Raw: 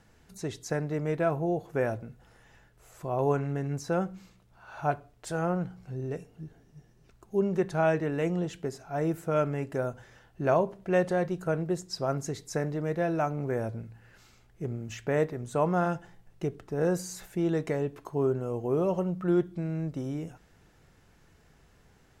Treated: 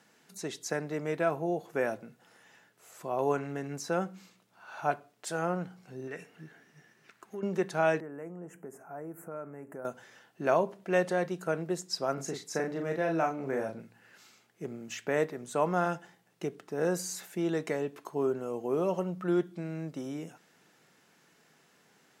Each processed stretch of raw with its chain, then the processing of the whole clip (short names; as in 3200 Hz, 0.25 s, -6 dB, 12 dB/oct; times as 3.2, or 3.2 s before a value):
6.07–7.43 compressor 5:1, threshold -35 dBFS + bell 1800 Hz +12.5 dB 1.4 oct
8–9.85 compressor 3:1, threshold -39 dBFS + Butterworth band-stop 4000 Hz, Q 0.52
12.14–13.8 high shelf 5200 Hz -6 dB + doubler 37 ms -4.5 dB
whole clip: HPF 170 Hz 24 dB/oct; tilt shelf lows -3 dB, about 1100 Hz